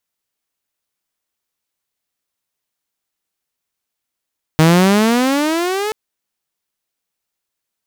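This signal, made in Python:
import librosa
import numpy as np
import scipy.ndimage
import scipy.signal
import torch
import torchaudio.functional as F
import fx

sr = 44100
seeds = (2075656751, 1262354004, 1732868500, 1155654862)

y = fx.riser_tone(sr, length_s=1.33, level_db=-4.5, wave='saw', hz=155.0, rise_st=18.0, swell_db=-11)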